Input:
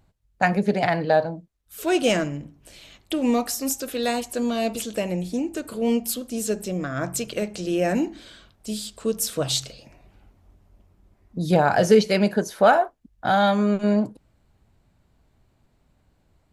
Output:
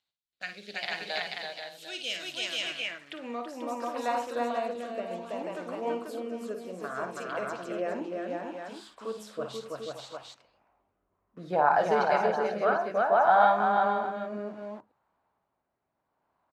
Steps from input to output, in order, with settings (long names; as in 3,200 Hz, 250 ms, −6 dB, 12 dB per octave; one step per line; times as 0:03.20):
multi-tap delay 54/329/487/572/728/746 ms −8/−3/−4/−12.5/−18.5/−8 dB
in parallel at −6 dB: bit reduction 6 bits
on the sum: band-pass filter sweep 3,700 Hz → 1,000 Hz, 0:02.58–0:03.50
rotating-speaker cabinet horn 0.65 Hz